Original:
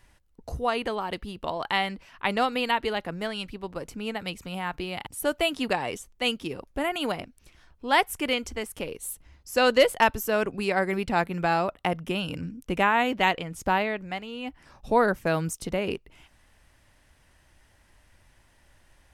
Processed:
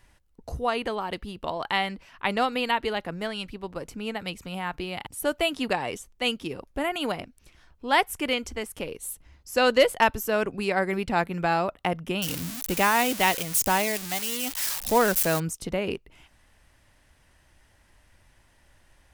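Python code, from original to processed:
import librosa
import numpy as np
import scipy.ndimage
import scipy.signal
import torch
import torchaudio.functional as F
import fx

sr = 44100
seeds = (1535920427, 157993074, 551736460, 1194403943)

y = fx.crossing_spikes(x, sr, level_db=-17.5, at=(12.22, 15.4))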